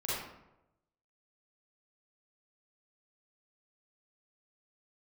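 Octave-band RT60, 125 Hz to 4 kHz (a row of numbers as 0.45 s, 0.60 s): 1.1 s, 0.90 s, 0.95 s, 0.85 s, 0.70 s, 0.50 s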